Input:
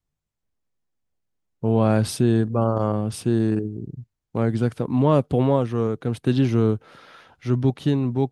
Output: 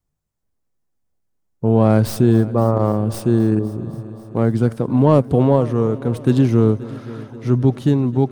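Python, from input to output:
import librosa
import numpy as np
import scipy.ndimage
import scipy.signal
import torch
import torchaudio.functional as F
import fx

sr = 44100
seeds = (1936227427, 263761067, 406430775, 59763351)

y = fx.tracing_dist(x, sr, depth_ms=0.099)
y = fx.peak_eq(y, sr, hz=3000.0, db=-6.5, octaves=1.7)
y = fx.echo_heads(y, sr, ms=263, heads='first and second', feedback_pct=63, wet_db=-21.5)
y = y * 10.0 ** (5.0 / 20.0)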